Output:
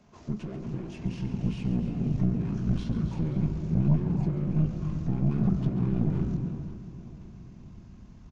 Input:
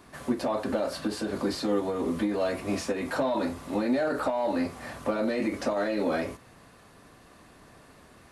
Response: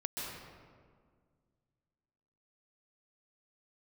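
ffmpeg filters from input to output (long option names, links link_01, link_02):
-filter_complex "[0:a]asubboost=boost=9.5:cutoff=230,acrossover=split=420[link_01][link_02];[link_02]asoftclip=type=tanh:threshold=-35dB[link_03];[link_01][link_03]amix=inputs=2:normalize=0,equalizer=frequency=370:width_type=o:width=0.45:gain=9.5,aeval=exprs='0.501*(cos(1*acos(clip(val(0)/0.501,-1,1)))-cos(1*PI/2))+0.0355*(cos(2*acos(clip(val(0)/0.501,-1,1)))-cos(2*PI/2))+0.0447*(cos(6*acos(clip(val(0)/0.501,-1,1)))-cos(6*PI/2))':channel_layout=same,asetrate=26222,aresample=44100,atempo=1.68179,aecho=1:1:530|1060|1590|2120|2650:0.178|0.0907|0.0463|0.0236|0.012,asplit=2[link_04][link_05];[1:a]atrim=start_sample=2205,afade=type=out:start_time=0.41:duration=0.01,atrim=end_sample=18522,adelay=137[link_06];[link_05][link_06]afir=irnorm=-1:irlink=0,volume=-8.5dB[link_07];[link_04][link_07]amix=inputs=2:normalize=0,aresample=22050,aresample=44100,volume=-8dB"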